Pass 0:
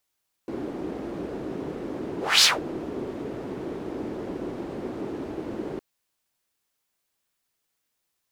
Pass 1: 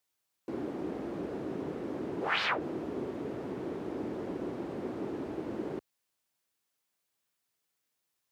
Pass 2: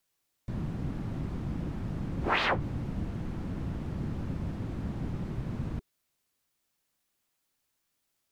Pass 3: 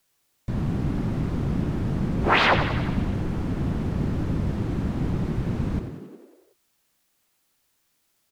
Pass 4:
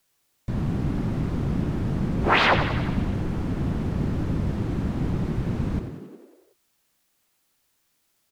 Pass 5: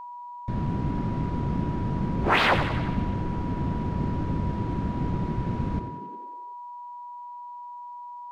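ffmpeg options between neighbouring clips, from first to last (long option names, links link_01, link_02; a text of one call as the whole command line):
ffmpeg -i in.wav -filter_complex "[0:a]highpass=71,acrossover=split=2600[link_01][link_02];[link_02]acompressor=threshold=-57dB:ratio=4:attack=1:release=60[link_03];[link_01][link_03]amix=inputs=2:normalize=0,volume=-4dB" out.wav
ffmpeg -i in.wav -af "afreqshift=-450,volume=3dB" out.wav
ffmpeg -i in.wav -filter_complex "[0:a]asplit=9[link_01][link_02][link_03][link_04][link_05][link_06][link_07][link_08][link_09];[link_02]adelay=91,afreqshift=42,volume=-9dB[link_10];[link_03]adelay=182,afreqshift=84,volume=-13dB[link_11];[link_04]adelay=273,afreqshift=126,volume=-17dB[link_12];[link_05]adelay=364,afreqshift=168,volume=-21dB[link_13];[link_06]adelay=455,afreqshift=210,volume=-25.1dB[link_14];[link_07]adelay=546,afreqshift=252,volume=-29.1dB[link_15];[link_08]adelay=637,afreqshift=294,volume=-33.1dB[link_16];[link_09]adelay=728,afreqshift=336,volume=-37.1dB[link_17];[link_01][link_10][link_11][link_12][link_13][link_14][link_15][link_16][link_17]amix=inputs=9:normalize=0,volume=8dB" out.wav
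ffmpeg -i in.wav -af anull out.wav
ffmpeg -i in.wav -af "adynamicsmooth=sensitivity=7.5:basefreq=5500,aeval=exprs='val(0)+0.0178*sin(2*PI*970*n/s)':channel_layout=same,volume=-2dB" out.wav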